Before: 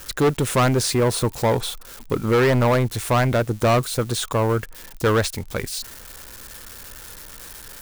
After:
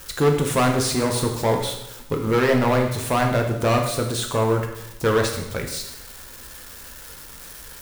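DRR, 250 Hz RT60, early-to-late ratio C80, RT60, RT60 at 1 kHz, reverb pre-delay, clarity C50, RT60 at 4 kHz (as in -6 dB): 2.0 dB, 0.95 s, 8.5 dB, 0.90 s, 0.90 s, 4 ms, 6.0 dB, 0.80 s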